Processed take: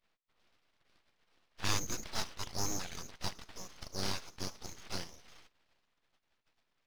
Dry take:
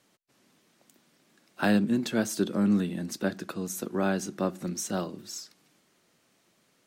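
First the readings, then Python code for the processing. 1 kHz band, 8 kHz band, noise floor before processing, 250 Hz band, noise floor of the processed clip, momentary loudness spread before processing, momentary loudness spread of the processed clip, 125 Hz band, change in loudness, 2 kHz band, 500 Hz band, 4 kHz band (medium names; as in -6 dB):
-7.5 dB, -3.0 dB, -69 dBFS, -21.0 dB, -81 dBFS, 12 LU, 14 LU, -11.0 dB, -10.5 dB, -9.0 dB, -16.0 dB, +0.5 dB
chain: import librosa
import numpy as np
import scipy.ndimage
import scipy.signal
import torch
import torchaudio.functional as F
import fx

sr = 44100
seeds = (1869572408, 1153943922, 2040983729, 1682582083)

y = fx.spec_gate(x, sr, threshold_db=-15, keep='weak')
y = fx.freq_invert(y, sr, carrier_hz=3500)
y = np.abs(y)
y = y * librosa.db_to_amplitude(4.0)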